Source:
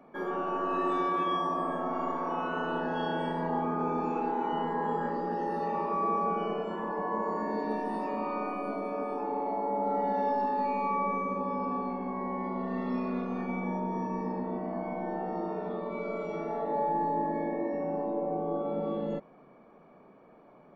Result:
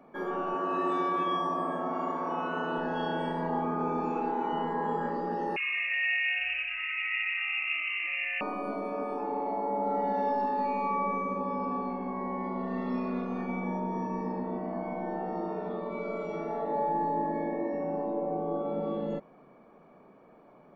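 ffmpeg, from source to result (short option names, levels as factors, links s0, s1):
-filter_complex "[0:a]asettb=1/sr,asplit=3[s0][s1][s2];[s0]atrim=end=0.544[s3];[s1]atrim=start=0.54:end=2.78,asetpts=PTS-STARTPTS,afade=t=in:d=0.004:c=qsin,afade=t=out:st=2.236:d=0.004:c=qsin,highpass=62[s4];[s2]atrim=start=2.776[s5];[s3][s4]acrossfade=d=0.004:c1=hsin:c2=qsin[s6];[s6][s5]acrossfade=d=0.004:c1=qsin:c2=hsin,asettb=1/sr,asplit=3[s7][s8][s9];[s7]atrim=end=5.564[s10];[s8]atrim=start=5.56:end=8.41,asetpts=PTS-STARTPTS,afade=t=in:d=0.004:c=qsin,afade=t=out:st=2.846:d=0.004:c=qsin,lowpass=f=2600:t=q:w=0.5098,lowpass=f=2600:t=q:w=0.6013,lowpass=f=2600:t=q:w=0.9,lowpass=f=2600:t=q:w=2.563,afreqshift=-3000[s11];[s9]atrim=start=8.406[s12];[s10][s11]acrossfade=d=0.004:c1=hsin:c2=qsin[s13];[s13][s12]acrossfade=d=0.004:c1=qsin:c2=hsin"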